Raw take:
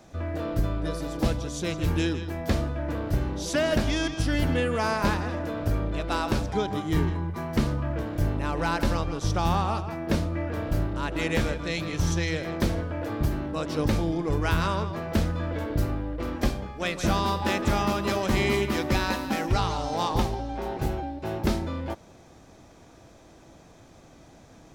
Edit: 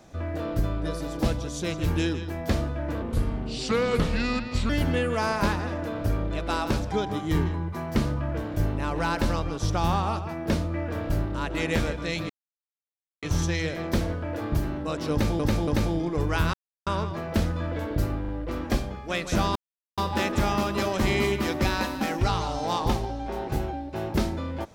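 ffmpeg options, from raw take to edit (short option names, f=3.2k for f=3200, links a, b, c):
-filter_complex "[0:a]asplit=10[a][b][c][d][e][f][g][h][i][j];[a]atrim=end=3.024[k];[b]atrim=start=3.02:end=4.31,asetpts=PTS-STARTPTS,asetrate=33957,aresample=44100[l];[c]atrim=start=4.306:end=11.91,asetpts=PTS-STARTPTS,afade=t=out:st=7.6:d=0.004:c=hsin,apad=pad_dur=0.93[m];[d]atrim=start=11.91:end=14.082,asetpts=PTS-STARTPTS,afade=t=in:d=0.004:c=hsin[n];[e]atrim=start=13.798:end=14.082[o];[f]atrim=start=13.798:end=14.66,asetpts=PTS-STARTPTS,afade=t=out:st=0.858:d=0.004:c=hsin,apad=pad_dur=0.33[p];[g]atrim=start=14.66:end=16.042,asetpts=PTS-STARTPTS,afade=t=in:d=0.004:c=hsin[q];[h]atrim=start=15.998:end=16.042[r];[i]atrim=start=15.998:end=17.27,asetpts=PTS-STARTPTS,afade=t=out:st=1.268:d=0.004:c=hsin,apad=pad_dur=0.42[s];[j]atrim=start=17.27,asetpts=PTS-STARTPTS,afade=t=in:d=0.004:c=hsin[t];[k][l]acrossfade=d=0.004:c1=hsin:c2=hsin[u];[m][n]concat=n=2:v=0:a=1[v];[u][v]acrossfade=d=0.004:c1=hsin:c2=hsin[w];[w][o]acrossfade=d=0.004:c1=hsin:c2=hsin[x];[p][q]concat=n=2:v=0:a=1[y];[x][y]acrossfade=d=0.004:c1=hsin:c2=hsin[z];[z][r]acrossfade=d=0.004:c1=hsin:c2=hsin[aa];[s][t]concat=n=2:v=0:a=1[ab];[aa][ab]acrossfade=d=0.004:c1=hsin:c2=hsin"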